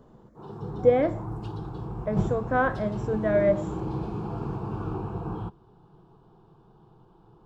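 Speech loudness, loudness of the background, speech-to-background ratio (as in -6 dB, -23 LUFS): -26.0 LUFS, -33.5 LUFS, 7.5 dB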